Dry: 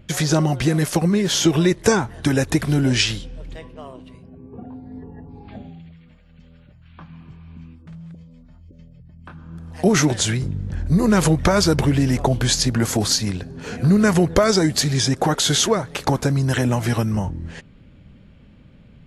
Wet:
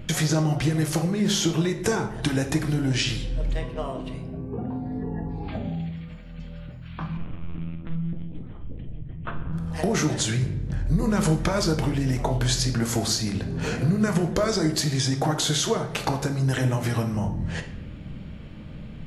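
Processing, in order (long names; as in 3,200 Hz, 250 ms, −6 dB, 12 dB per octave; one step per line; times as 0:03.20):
downward compressor 3 to 1, threshold −35 dBFS, peak gain reduction 18 dB
0:07.17–0:09.53: linear-prediction vocoder at 8 kHz pitch kept
rectangular room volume 200 cubic metres, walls mixed, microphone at 0.55 metres
level +7 dB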